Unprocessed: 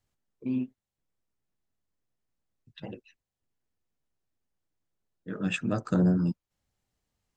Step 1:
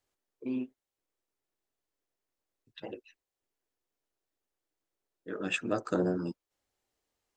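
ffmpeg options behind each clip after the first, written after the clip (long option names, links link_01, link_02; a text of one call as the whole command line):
ffmpeg -i in.wav -af "lowshelf=frequency=250:width_type=q:width=1.5:gain=-10" out.wav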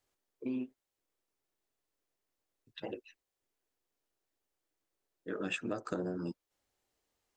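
ffmpeg -i in.wav -af "acompressor=threshold=-34dB:ratio=6,volume=1dB" out.wav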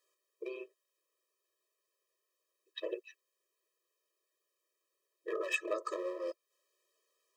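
ffmpeg -i in.wav -af "lowshelf=frequency=230:width_type=q:width=3:gain=8,volume=29dB,asoftclip=hard,volume=-29dB,afftfilt=real='re*eq(mod(floor(b*sr/1024/330),2),1)':imag='im*eq(mod(floor(b*sr/1024/330),2),1)':win_size=1024:overlap=0.75,volume=7dB" out.wav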